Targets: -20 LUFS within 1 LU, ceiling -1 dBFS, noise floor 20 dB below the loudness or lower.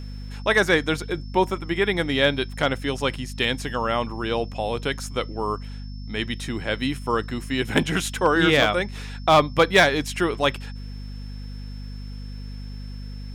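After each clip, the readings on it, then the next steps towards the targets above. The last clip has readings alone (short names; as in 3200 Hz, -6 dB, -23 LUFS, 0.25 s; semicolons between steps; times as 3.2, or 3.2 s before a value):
hum 50 Hz; harmonics up to 250 Hz; hum level -32 dBFS; steady tone 5300 Hz; tone level -49 dBFS; loudness -23.0 LUFS; peak -5.5 dBFS; loudness target -20.0 LUFS
-> notches 50/100/150/200/250 Hz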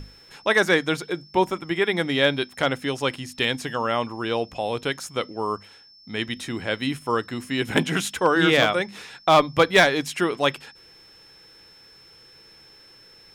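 hum none; steady tone 5300 Hz; tone level -49 dBFS
-> notch 5300 Hz, Q 30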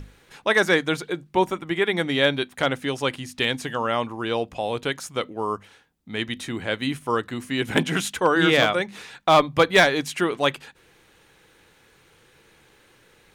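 steady tone none; loudness -23.0 LUFS; peak -5.5 dBFS; loudness target -20.0 LUFS
-> gain +3 dB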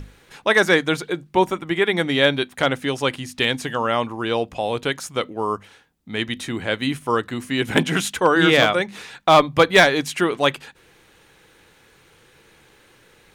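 loudness -20.0 LUFS; peak -2.5 dBFS; noise floor -55 dBFS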